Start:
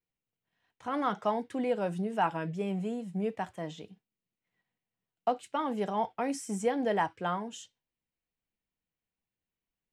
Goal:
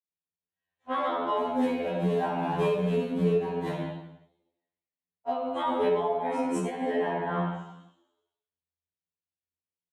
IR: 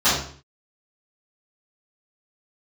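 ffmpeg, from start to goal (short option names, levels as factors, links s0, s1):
-filter_complex "[0:a]asettb=1/sr,asplit=3[s0][s1][s2];[s0]atrim=end=1.364[s3];[s1]atrim=start=1.36:end=3.74,asetpts=PTS-STARTPTS,afade=t=in:d=0.004:c=qsin,afade=t=out:st=2.376:d=0.004:c=qsin,aeval=exprs='val(0)+0.5*0.0141*sgn(val(0))':c=same[s4];[s2]atrim=start=3.736[s5];[s3][s4]acrossfade=d=0.004:c1=hsin:c2=qsin[s6];[s6][s5]acrossfade=d=0.004:c1=qsin:c2=hsin,asplit=7[s7][s8][s9][s10][s11][s12][s13];[s8]adelay=118,afreqshift=37,volume=0.355[s14];[s9]adelay=236,afreqshift=74,volume=0.182[s15];[s10]adelay=354,afreqshift=111,volume=0.0923[s16];[s11]adelay=472,afreqshift=148,volume=0.0473[s17];[s12]adelay=590,afreqshift=185,volume=0.024[s18];[s13]adelay=708,afreqshift=222,volume=0.0123[s19];[s7][s14][s15][s16][s17][s18][s19]amix=inputs=7:normalize=0,alimiter=level_in=1.12:limit=0.0631:level=0:latency=1:release=474,volume=0.891,agate=range=0.0141:threshold=0.0224:ratio=16:detection=peak[s20];[1:a]atrim=start_sample=2205,asetrate=26460,aresample=44100[s21];[s20][s21]afir=irnorm=-1:irlink=0,acompressor=threshold=0.0631:ratio=10,afftfilt=real='re*2*eq(mod(b,4),0)':imag='im*2*eq(mod(b,4),0)':win_size=2048:overlap=0.75,volume=1.33"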